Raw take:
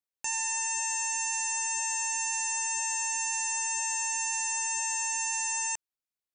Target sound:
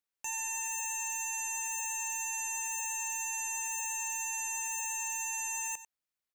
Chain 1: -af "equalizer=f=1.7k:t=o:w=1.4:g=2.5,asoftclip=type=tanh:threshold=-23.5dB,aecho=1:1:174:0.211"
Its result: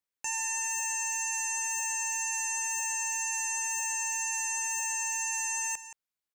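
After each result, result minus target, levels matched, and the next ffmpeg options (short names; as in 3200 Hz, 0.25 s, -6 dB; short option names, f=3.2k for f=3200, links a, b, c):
echo 79 ms late; soft clip: distortion -9 dB
-af "equalizer=f=1.7k:t=o:w=1.4:g=2.5,asoftclip=type=tanh:threshold=-23.5dB,aecho=1:1:95:0.211"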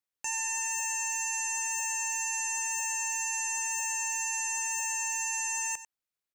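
soft clip: distortion -9 dB
-af "equalizer=f=1.7k:t=o:w=1.4:g=2.5,asoftclip=type=tanh:threshold=-31dB,aecho=1:1:95:0.211"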